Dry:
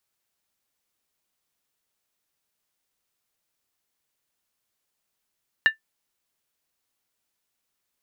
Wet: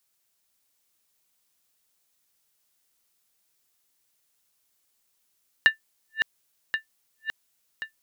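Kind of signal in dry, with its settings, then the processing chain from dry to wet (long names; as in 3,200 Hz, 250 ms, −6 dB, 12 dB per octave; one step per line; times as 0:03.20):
struck skin, lowest mode 1,770 Hz, decay 0.12 s, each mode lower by 11 dB, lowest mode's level −9 dB
feedback delay that plays each chunk backwards 540 ms, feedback 67%, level −6.5 dB
high-shelf EQ 3,700 Hz +8 dB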